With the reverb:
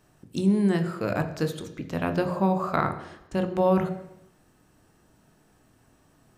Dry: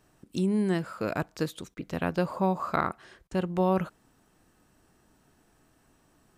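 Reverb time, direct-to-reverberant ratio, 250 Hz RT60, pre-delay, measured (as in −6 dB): 0.85 s, 6.5 dB, 0.85 s, 19 ms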